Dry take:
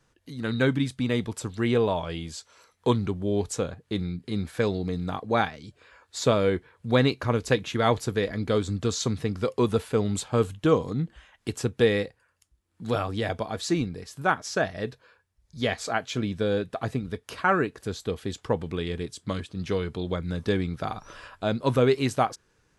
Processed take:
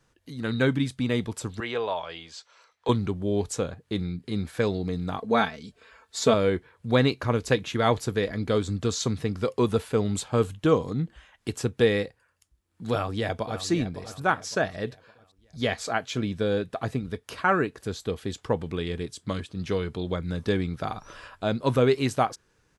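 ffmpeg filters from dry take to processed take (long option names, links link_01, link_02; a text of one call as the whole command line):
ffmpeg -i in.wav -filter_complex "[0:a]asettb=1/sr,asplit=3[link_01][link_02][link_03];[link_01]atrim=end=1.604[link_04];[link_02]atrim=start=1.6:end=2.89,asetpts=PTS-STARTPTS,afade=type=in:duration=0.004:curve=qsin,afade=type=out:start_time=1.286:duration=0.004:curve=qsin,acrossover=split=490 6400:gain=0.141 1 0.1[link_05][link_06][link_07];[link_05][link_06][link_07]amix=inputs=3:normalize=0[link_08];[link_03]atrim=start=2.886[link_09];[link_04][link_08]acrossfade=duration=0.004:curve1=hsin:curve2=qsin[link_10];[link_10][link_09]acrossfade=duration=0.004:curve1=qsin:curve2=hsin,asettb=1/sr,asplit=3[link_11][link_12][link_13];[link_11]atrim=end=5.184[link_14];[link_12]atrim=start=5.18:end=6.34,asetpts=PTS-STARTPTS,afade=type=in:duration=0.004:curve=qsin,afade=type=out:start_time=1.156:duration=0.004:curve=qsin,aecho=1:1:4.5:0.65,atrim=end_sample=51156[link_15];[link_13]atrim=start=6.336[link_16];[link_14][link_15]acrossfade=duration=0.004:curve1=hsin:curve2=qsin[link_17];[link_17][link_16]acrossfade=duration=0.004:curve1=qsin:curve2=hsin,asplit=2[link_18][link_19];[link_19]afade=type=in:start_time=12.91:duration=0.01,afade=type=out:start_time=13.63:duration=0.01,aecho=0:1:560|1120|1680|2240:0.251189|0.100475|0.0401902|0.0160761[link_20];[link_18][link_20]amix=inputs=2:normalize=0" out.wav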